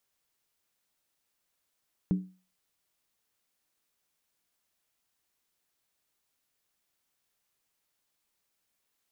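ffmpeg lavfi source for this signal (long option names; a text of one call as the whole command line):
ffmpeg -f lavfi -i "aevalsrc='0.1*pow(10,-3*t/0.35)*sin(2*PI*185*t)+0.0316*pow(10,-3*t/0.277)*sin(2*PI*294.9*t)+0.01*pow(10,-3*t/0.239)*sin(2*PI*395.2*t)+0.00316*pow(10,-3*t/0.231)*sin(2*PI*424.8*t)+0.001*pow(10,-3*t/0.215)*sin(2*PI*490.8*t)':duration=0.63:sample_rate=44100" out.wav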